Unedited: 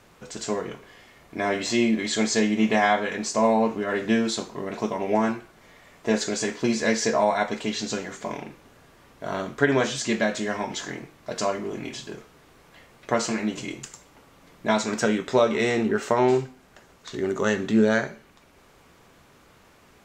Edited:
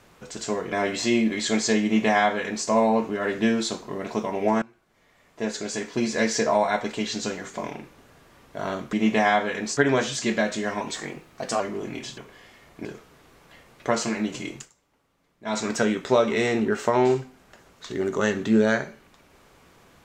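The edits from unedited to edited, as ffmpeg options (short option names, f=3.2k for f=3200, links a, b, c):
-filter_complex "[0:a]asplit=11[a][b][c][d][e][f][g][h][i][j][k];[a]atrim=end=0.722[l];[b]atrim=start=1.388:end=5.29,asetpts=PTS-STARTPTS,afade=t=out:st=3.898:d=0.004:c=hsin:silence=0.0841395[m];[c]atrim=start=5.29:end=9.602,asetpts=PTS-STARTPTS,afade=t=in:d=1.71:silence=0.0841395[n];[d]atrim=start=2.498:end=3.342[o];[e]atrim=start=9.598:end=10.644[p];[f]atrim=start=10.64:end=11.5,asetpts=PTS-STARTPTS,asetrate=48069,aresample=44100,atrim=end_sample=34794,asetpts=PTS-STARTPTS[q];[g]atrim=start=11.496:end=12.082[r];[h]atrim=start=0.718:end=1.392[s];[i]atrim=start=12.078:end=13.94,asetpts=PTS-STARTPTS,afade=t=out:st=1.722:d=0.14:silence=0.158489[t];[j]atrim=start=13.94:end=14.68,asetpts=PTS-STARTPTS,volume=-16dB[u];[k]atrim=start=14.68,asetpts=PTS-STARTPTS,afade=t=in:d=0.14:silence=0.158489[v];[m][n]concat=n=2:v=0:a=1[w];[l][w]acrossfade=d=0.004:c1=hsin:c2=hsin[x];[x][o]acrossfade=d=0.004:c1=hsin:c2=hsin[y];[y][p]acrossfade=d=0.004:c1=hsin:c2=hsin[z];[z][q]acrossfade=d=0.004:c1=hsin:c2=hsin[aa];[aa][r]acrossfade=d=0.004:c1=hsin:c2=hsin[ab];[ab][s]acrossfade=d=0.004:c1=hsin:c2=hsin[ac];[t][u][v]concat=n=3:v=0:a=1[ad];[ac][ad]acrossfade=d=0.004:c1=hsin:c2=hsin"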